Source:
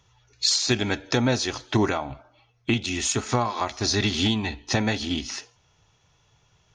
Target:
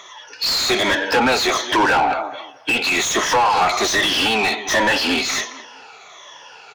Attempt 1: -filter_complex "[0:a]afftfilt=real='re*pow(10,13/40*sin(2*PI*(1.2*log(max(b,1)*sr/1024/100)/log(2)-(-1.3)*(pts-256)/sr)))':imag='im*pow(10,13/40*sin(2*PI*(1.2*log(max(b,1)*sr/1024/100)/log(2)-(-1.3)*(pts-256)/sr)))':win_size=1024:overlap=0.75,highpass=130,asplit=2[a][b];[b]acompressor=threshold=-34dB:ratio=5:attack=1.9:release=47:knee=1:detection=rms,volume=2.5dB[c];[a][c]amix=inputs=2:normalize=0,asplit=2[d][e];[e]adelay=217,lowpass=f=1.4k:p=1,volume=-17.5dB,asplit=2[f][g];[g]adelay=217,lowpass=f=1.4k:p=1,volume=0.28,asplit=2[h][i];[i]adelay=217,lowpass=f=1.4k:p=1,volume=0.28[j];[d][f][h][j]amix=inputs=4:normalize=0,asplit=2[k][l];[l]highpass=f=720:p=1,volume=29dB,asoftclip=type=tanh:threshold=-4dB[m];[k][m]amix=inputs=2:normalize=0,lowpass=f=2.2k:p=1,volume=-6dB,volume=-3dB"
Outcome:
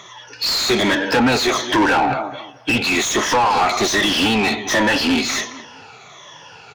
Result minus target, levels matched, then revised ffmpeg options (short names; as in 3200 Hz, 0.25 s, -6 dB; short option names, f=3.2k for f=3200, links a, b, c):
125 Hz band +6.5 dB
-filter_complex "[0:a]afftfilt=real='re*pow(10,13/40*sin(2*PI*(1.2*log(max(b,1)*sr/1024/100)/log(2)-(-1.3)*(pts-256)/sr)))':imag='im*pow(10,13/40*sin(2*PI*(1.2*log(max(b,1)*sr/1024/100)/log(2)-(-1.3)*(pts-256)/sr)))':win_size=1024:overlap=0.75,highpass=420,asplit=2[a][b];[b]acompressor=threshold=-34dB:ratio=5:attack=1.9:release=47:knee=1:detection=rms,volume=2.5dB[c];[a][c]amix=inputs=2:normalize=0,asplit=2[d][e];[e]adelay=217,lowpass=f=1.4k:p=1,volume=-17.5dB,asplit=2[f][g];[g]adelay=217,lowpass=f=1.4k:p=1,volume=0.28,asplit=2[h][i];[i]adelay=217,lowpass=f=1.4k:p=1,volume=0.28[j];[d][f][h][j]amix=inputs=4:normalize=0,asplit=2[k][l];[l]highpass=f=720:p=1,volume=29dB,asoftclip=type=tanh:threshold=-4dB[m];[k][m]amix=inputs=2:normalize=0,lowpass=f=2.2k:p=1,volume=-6dB,volume=-3dB"